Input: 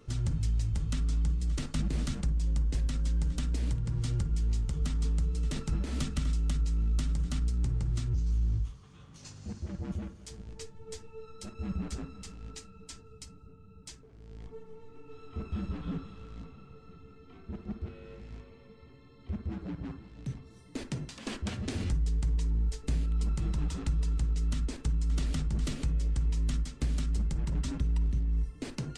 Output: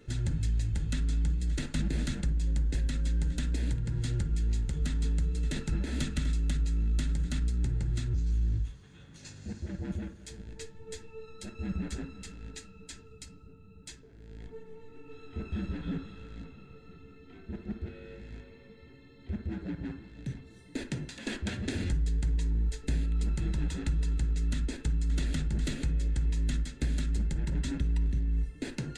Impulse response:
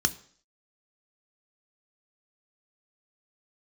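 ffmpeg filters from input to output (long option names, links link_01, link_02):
-filter_complex "[0:a]asplit=2[link_01][link_02];[link_02]highpass=650,lowpass=3000[link_03];[1:a]atrim=start_sample=2205[link_04];[link_03][link_04]afir=irnorm=-1:irlink=0,volume=-7dB[link_05];[link_01][link_05]amix=inputs=2:normalize=0"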